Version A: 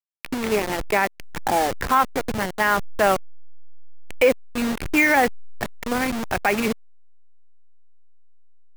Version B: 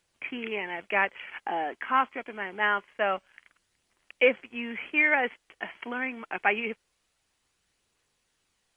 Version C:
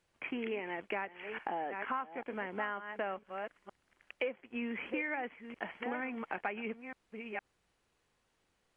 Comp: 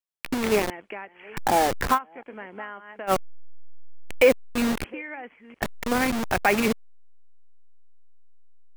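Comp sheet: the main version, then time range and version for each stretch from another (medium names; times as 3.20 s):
A
0.70–1.37 s: from C
1.96–3.10 s: from C, crossfade 0.06 s
4.84–5.62 s: from C
not used: B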